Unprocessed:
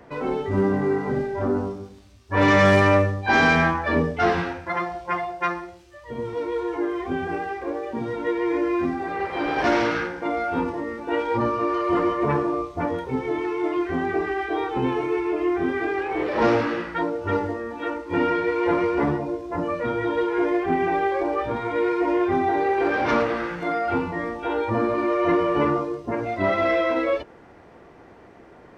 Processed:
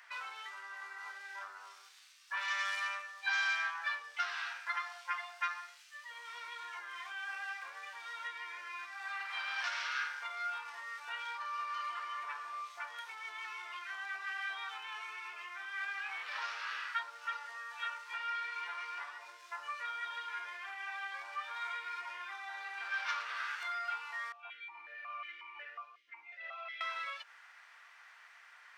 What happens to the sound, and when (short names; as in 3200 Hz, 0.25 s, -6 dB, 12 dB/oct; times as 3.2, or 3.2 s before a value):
24.32–26.81 vowel sequencer 5.5 Hz
whole clip: compressor 6:1, threshold -26 dBFS; HPF 1400 Hz 24 dB/oct; dynamic EQ 2000 Hz, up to -6 dB, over -50 dBFS, Q 2.6; gain +1.5 dB